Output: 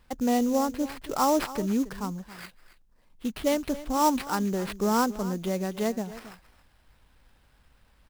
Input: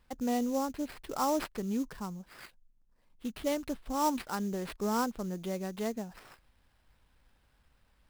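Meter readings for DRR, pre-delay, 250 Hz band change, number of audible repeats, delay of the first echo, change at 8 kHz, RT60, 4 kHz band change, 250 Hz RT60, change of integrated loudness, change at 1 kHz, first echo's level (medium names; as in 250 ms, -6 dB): no reverb, no reverb, +6.5 dB, 1, 274 ms, +6.5 dB, no reverb, +6.5 dB, no reverb, +6.5 dB, +6.5 dB, -16.0 dB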